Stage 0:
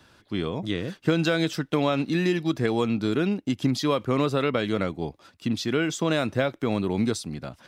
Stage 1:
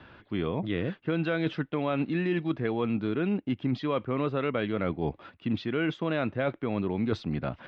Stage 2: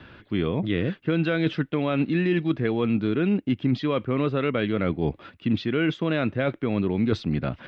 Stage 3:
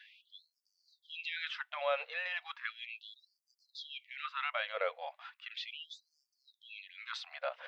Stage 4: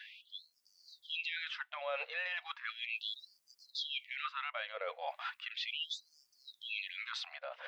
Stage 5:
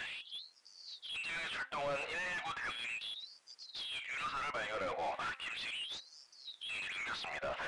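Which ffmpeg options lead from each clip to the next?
-af "lowpass=f=3k:w=0.5412,lowpass=f=3k:w=1.3066,areverse,acompressor=threshold=-31dB:ratio=6,areverse,volume=5.5dB"
-af "equalizer=f=860:t=o:w=1.3:g=-6,volume=6dB"
-af "afftfilt=real='re*gte(b*sr/1024,460*pow(4500/460,0.5+0.5*sin(2*PI*0.36*pts/sr)))':imag='im*gte(b*sr/1024,460*pow(4500/460,0.5+0.5*sin(2*PI*0.36*pts/sr)))':win_size=1024:overlap=0.75,volume=-4dB"
-af "areverse,acompressor=threshold=-46dB:ratio=5,areverse,alimiter=level_in=16dB:limit=-24dB:level=0:latency=1:release=400,volume=-16dB,dynaudnorm=f=130:g=9:m=5.5dB,volume=6.5dB"
-filter_complex "[0:a]asplit=2[a][b];[b]highpass=f=720:p=1,volume=30dB,asoftclip=type=tanh:threshold=-27.5dB[c];[a][c]amix=inputs=2:normalize=0,lowpass=f=1.6k:p=1,volume=-6dB,aresample=22050,aresample=44100,bandreject=f=264.7:t=h:w=4,bandreject=f=529.4:t=h:w=4,bandreject=f=794.1:t=h:w=4,bandreject=f=1.0588k:t=h:w=4,bandreject=f=1.3235k:t=h:w=4,bandreject=f=1.5882k:t=h:w=4,bandreject=f=1.8529k:t=h:w=4,volume=-2.5dB"

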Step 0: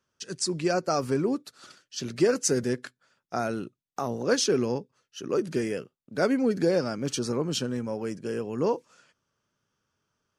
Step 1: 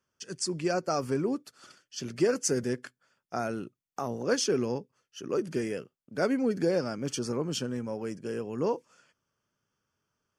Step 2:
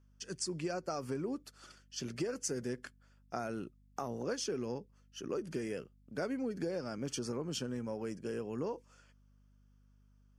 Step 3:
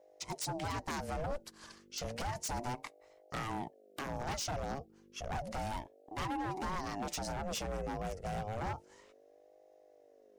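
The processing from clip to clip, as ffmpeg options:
-af "bandreject=f=3.9k:w=6,volume=-3dB"
-af "acompressor=threshold=-31dB:ratio=5,aeval=exprs='val(0)+0.000891*(sin(2*PI*50*n/s)+sin(2*PI*2*50*n/s)/2+sin(2*PI*3*50*n/s)/3+sin(2*PI*4*50*n/s)/4+sin(2*PI*5*50*n/s)/5)':c=same,volume=-3dB"
-af "aeval=exprs='0.0188*(abs(mod(val(0)/0.0188+3,4)-2)-1)':c=same,aeval=exprs='val(0)*sin(2*PI*420*n/s+420*0.35/0.31*sin(2*PI*0.31*n/s))':c=same,volume=5.5dB"

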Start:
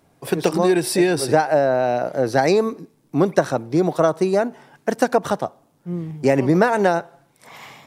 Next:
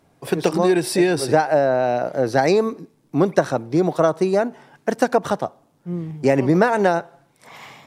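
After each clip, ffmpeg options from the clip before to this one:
-af "highshelf=f=10k:g=-5.5"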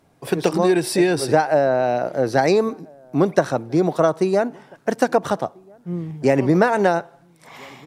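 -filter_complex "[0:a]asplit=2[a][b];[b]adelay=1341,volume=-28dB,highshelf=f=4k:g=-30.2[c];[a][c]amix=inputs=2:normalize=0"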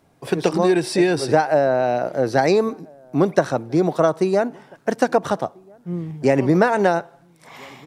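-filter_complex "[0:a]acrossover=split=9300[a][b];[b]acompressor=threshold=-52dB:ratio=4:attack=1:release=60[c];[a][c]amix=inputs=2:normalize=0"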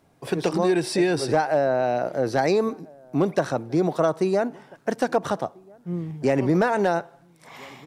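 -filter_complex "[0:a]asplit=2[a][b];[b]alimiter=limit=-13.5dB:level=0:latency=1:release=31,volume=-2.5dB[c];[a][c]amix=inputs=2:normalize=0,asoftclip=type=hard:threshold=-4.5dB,volume=-7dB"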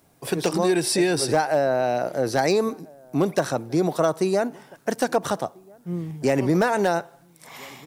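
-af "aemphasis=mode=production:type=50kf"

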